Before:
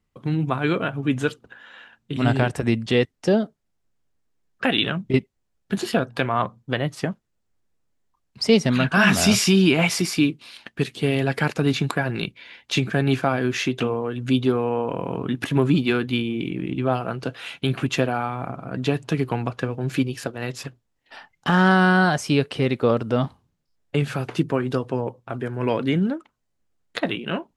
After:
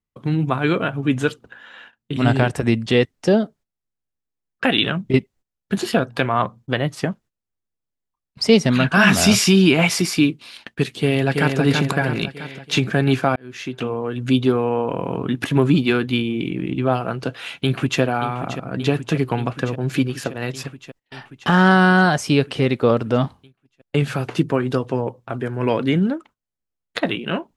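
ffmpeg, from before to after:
ffmpeg -i in.wav -filter_complex "[0:a]asplit=2[link_01][link_02];[link_02]afade=type=in:start_time=10.98:duration=0.01,afade=type=out:start_time=11.59:duration=0.01,aecho=0:1:330|660|990|1320|1650|1980|2310:0.595662|0.327614|0.180188|0.0991033|0.0545068|0.0299787|0.0164883[link_03];[link_01][link_03]amix=inputs=2:normalize=0,asplit=2[link_04][link_05];[link_05]afade=type=in:start_time=17.59:duration=0.01,afade=type=out:start_time=18.01:duration=0.01,aecho=0:1:580|1160|1740|2320|2900|3480|4060|4640|5220|5800|6380|6960:0.266073|0.212858|0.170286|0.136229|0.108983|0.0871866|0.0697493|0.0557994|0.0446396|0.0357116|0.0285693|0.0228555[link_06];[link_04][link_06]amix=inputs=2:normalize=0,asplit=2[link_07][link_08];[link_07]atrim=end=13.36,asetpts=PTS-STARTPTS,afade=type=out:start_time=13.356:duration=0.004:curve=hsin[link_09];[link_08]atrim=start=13.36,asetpts=PTS-STARTPTS,afade=type=in:duration=0.82[link_10];[link_09][link_10]concat=n=2:v=0:a=1,agate=range=-16dB:threshold=-47dB:ratio=16:detection=peak,volume=3dB" out.wav

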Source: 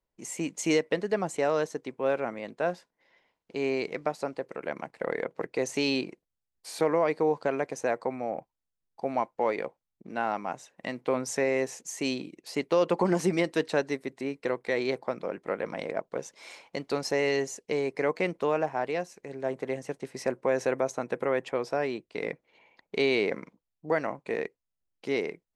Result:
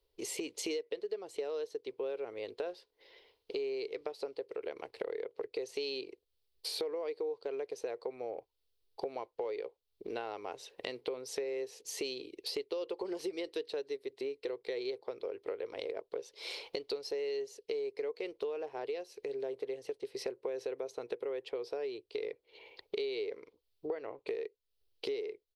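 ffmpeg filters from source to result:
ffmpeg -i in.wav -filter_complex "[0:a]asettb=1/sr,asplit=3[link_01][link_02][link_03];[link_01]atrim=end=23.874[link_04];[link_02]atrim=start=23.87:end=24.27,asetpts=PTS-STARTPTS,afade=type=in:duration=0.004:curve=qsin,afade=type=out:start_time=0.396:duration=0.004:curve=qsin,lowpass=3000[link_05];[link_03]atrim=start=24.266[link_06];[link_04][link_05]acrossfade=duration=0.004:curve1=hsin:curve2=qsin[link_07];[link_07][link_06]acrossfade=duration=0.004:curve1=qsin:curve2=hsin,firequalizer=gain_entry='entry(100,0);entry(160,-23);entry(420,9);entry(610,-5);entry(1700,-8);entry(3000,4);entry(4400,7);entry(6800,-9);entry(11000,0)':delay=0.05:min_phase=1,acompressor=threshold=-44dB:ratio=6,volume=7dB" out.wav

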